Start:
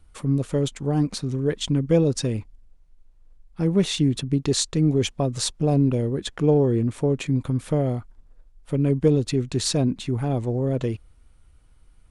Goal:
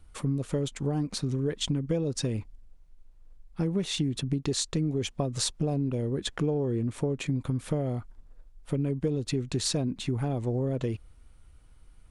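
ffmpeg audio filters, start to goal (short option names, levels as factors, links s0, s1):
-af "acompressor=threshold=0.0562:ratio=6"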